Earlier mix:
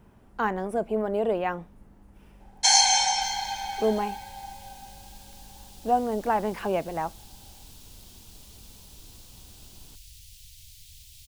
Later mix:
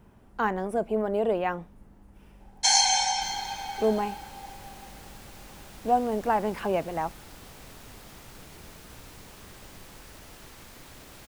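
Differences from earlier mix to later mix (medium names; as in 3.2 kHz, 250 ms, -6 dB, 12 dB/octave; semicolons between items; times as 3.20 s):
second sound: remove inverse Chebyshev band-stop 380–880 Hz, stop band 80 dB; reverb: off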